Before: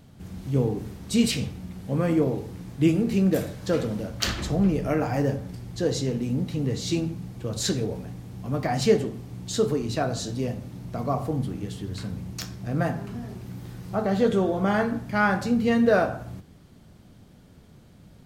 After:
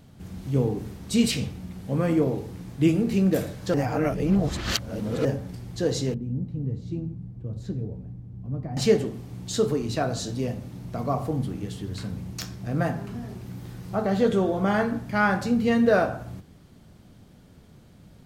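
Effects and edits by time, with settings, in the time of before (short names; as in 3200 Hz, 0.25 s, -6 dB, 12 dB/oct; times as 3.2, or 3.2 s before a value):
3.74–5.25 reverse
6.14–8.77 EQ curve 120 Hz 0 dB, 1700 Hz -21 dB, 7100 Hz -29 dB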